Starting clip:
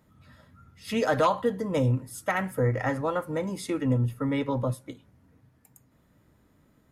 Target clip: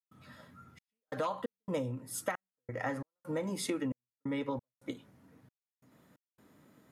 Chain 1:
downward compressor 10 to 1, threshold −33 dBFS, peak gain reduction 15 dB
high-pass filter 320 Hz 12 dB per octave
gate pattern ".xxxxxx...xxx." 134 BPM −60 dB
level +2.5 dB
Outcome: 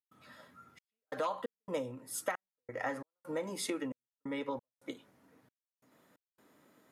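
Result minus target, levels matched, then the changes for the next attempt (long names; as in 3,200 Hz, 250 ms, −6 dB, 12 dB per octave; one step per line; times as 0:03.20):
125 Hz band −8.5 dB
change: high-pass filter 160 Hz 12 dB per octave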